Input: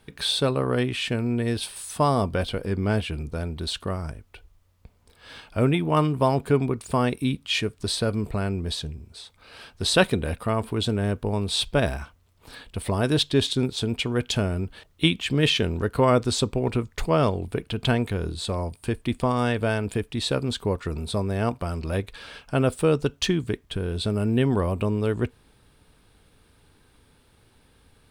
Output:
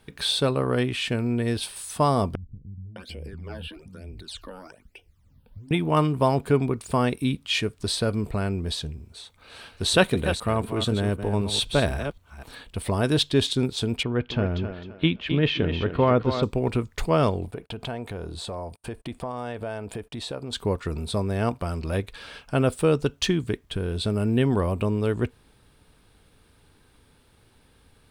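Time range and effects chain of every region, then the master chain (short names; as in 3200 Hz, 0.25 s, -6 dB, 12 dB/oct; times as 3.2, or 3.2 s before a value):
2.35–5.71 phaser stages 12, 1.1 Hz, lowest notch 110–1400 Hz + compressor 4:1, threshold -34 dBFS + bands offset in time lows, highs 0.61 s, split 200 Hz
9.13–12.69 reverse delay 0.254 s, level -9 dB + notch 5000 Hz, Q 11
14.03–16.43 air absorption 280 m + thinning echo 0.26 s, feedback 31%, high-pass 180 Hz, level -8 dB
17.45–20.53 gate -44 dBFS, range -28 dB + bell 720 Hz +9 dB 1.4 oct + compressor 3:1, threshold -33 dBFS
whole clip: dry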